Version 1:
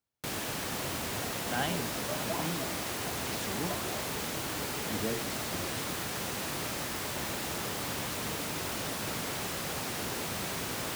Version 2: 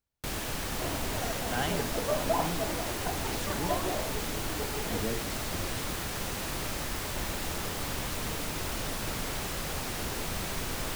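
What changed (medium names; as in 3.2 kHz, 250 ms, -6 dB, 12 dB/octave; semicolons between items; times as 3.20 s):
second sound +9.0 dB; master: remove high-pass 110 Hz 12 dB/octave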